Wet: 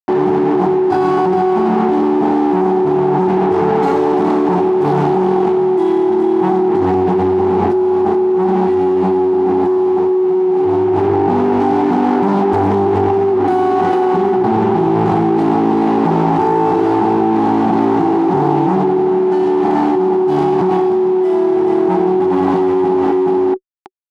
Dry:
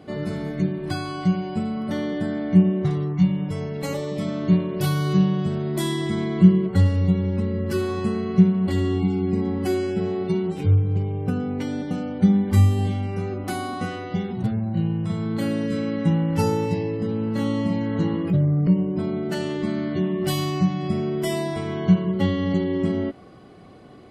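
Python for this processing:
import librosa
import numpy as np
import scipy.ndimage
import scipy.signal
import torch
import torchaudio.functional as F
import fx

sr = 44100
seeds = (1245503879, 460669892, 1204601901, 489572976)

y = fx.rotary(x, sr, hz=0.65)
y = fx.fuzz(y, sr, gain_db=42.0, gate_db=-36.0)
y = fx.double_bandpass(y, sr, hz=550.0, octaves=1.1)
y = y + 10.0 ** (-6.0 / 20.0) * np.pad(y, (int(426 * sr / 1000.0), 0))[:len(y)]
y = fx.env_flatten(y, sr, amount_pct=100)
y = y * 10.0 ** (-1.0 / 20.0)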